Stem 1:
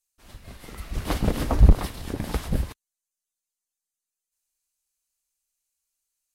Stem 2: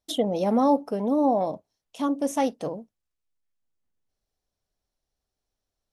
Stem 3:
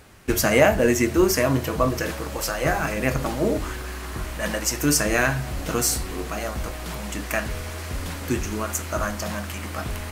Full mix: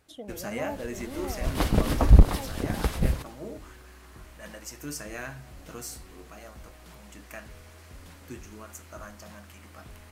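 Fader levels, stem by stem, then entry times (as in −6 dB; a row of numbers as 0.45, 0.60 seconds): +0.5, −17.5, −17.0 decibels; 0.50, 0.00, 0.00 seconds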